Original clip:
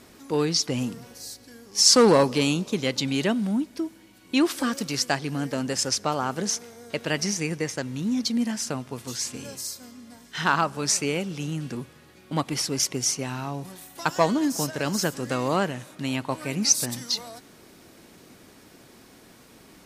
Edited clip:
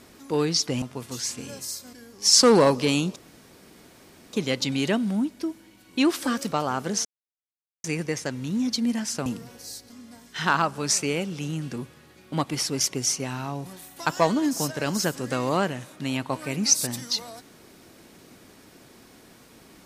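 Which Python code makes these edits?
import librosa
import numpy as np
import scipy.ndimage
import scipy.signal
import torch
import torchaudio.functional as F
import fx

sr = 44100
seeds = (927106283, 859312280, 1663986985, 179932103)

y = fx.edit(x, sr, fx.swap(start_s=0.82, length_s=0.64, other_s=8.78, other_length_s=1.11),
    fx.insert_room_tone(at_s=2.69, length_s=1.17),
    fx.cut(start_s=4.88, length_s=1.16),
    fx.silence(start_s=6.57, length_s=0.79), tone=tone)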